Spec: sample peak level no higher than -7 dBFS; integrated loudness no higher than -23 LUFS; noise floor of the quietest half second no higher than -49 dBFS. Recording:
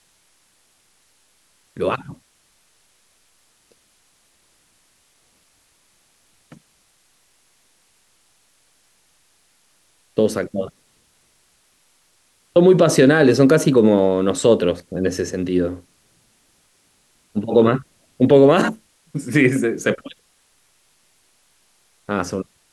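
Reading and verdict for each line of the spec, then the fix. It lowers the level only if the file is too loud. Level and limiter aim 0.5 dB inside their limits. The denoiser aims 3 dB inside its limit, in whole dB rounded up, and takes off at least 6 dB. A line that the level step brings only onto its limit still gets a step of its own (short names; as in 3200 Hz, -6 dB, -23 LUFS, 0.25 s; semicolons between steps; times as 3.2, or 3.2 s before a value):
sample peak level -3.5 dBFS: fail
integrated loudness -17.5 LUFS: fail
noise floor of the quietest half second -61 dBFS: OK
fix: gain -6 dB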